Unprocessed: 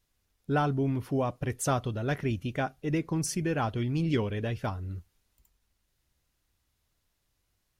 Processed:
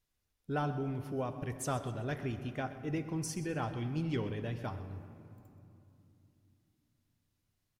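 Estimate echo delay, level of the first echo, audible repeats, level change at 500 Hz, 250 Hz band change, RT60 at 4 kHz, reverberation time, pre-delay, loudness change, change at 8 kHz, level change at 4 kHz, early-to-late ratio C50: 0.128 s, -15.5 dB, 3, -6.5 dB, -7.0 dB, 1.5 s, 2.9 s, 7 ms, -7.0 dB, -7.0 dB, -7.0 dB, 10.0 dB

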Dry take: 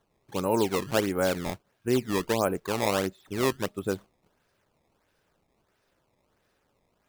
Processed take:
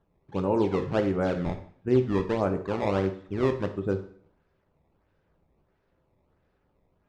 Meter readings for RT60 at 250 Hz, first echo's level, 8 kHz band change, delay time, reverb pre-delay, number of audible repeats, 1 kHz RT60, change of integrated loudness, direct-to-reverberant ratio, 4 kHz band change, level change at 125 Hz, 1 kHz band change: 0.60 s, none, under -15 dB, none, 4 ms, none, 0.55 s, +1.0 dB, 6.0 dB, -10.0 dB, +4.5 dB, -1.5 dB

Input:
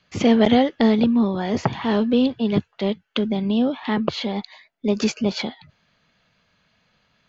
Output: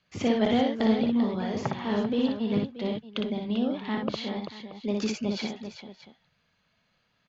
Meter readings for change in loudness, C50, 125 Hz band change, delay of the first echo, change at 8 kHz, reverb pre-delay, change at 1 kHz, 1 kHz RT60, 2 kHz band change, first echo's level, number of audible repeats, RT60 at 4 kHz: -7.0 dB, none, -7.5 dB, 59 ms, n/a, none, -7.0 dB, none, -7.0 dB, -3.5 dB, 3, none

